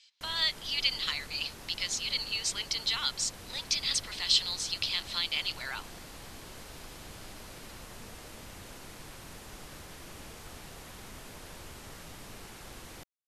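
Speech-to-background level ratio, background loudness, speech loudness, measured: 16.0 dB, −46.5 LKFS, −30.5 LKFS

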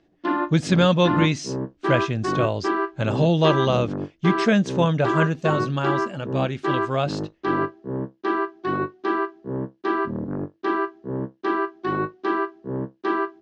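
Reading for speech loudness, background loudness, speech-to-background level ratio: −23.0 LKFS, −27.0 LKFS, 4.0 dB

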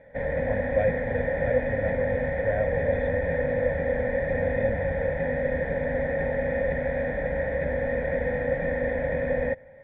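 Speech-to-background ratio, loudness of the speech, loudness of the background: −4.5 dB, −32.0 LKFS, −27.5 LKFS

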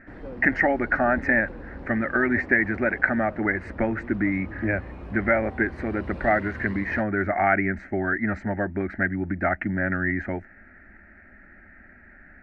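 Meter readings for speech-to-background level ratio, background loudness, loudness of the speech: 15.0 dB, −40.0 LKFS, −25.0 LKFS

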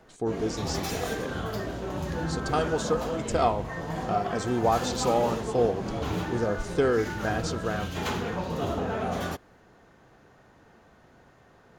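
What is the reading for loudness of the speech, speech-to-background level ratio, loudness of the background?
−29.0 LKFS, 3.5 dB, −32.5 LKFS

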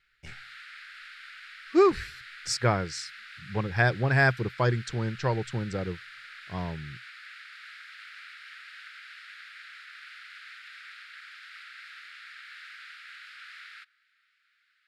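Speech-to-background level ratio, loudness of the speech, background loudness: 17.5 dB, −27.5 LKFS, −45.0 LKFS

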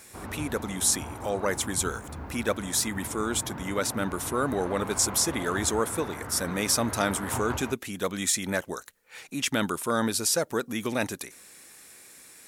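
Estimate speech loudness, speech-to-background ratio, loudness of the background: −28.0 LKFS, 10.5 dB, −38.5 LKFS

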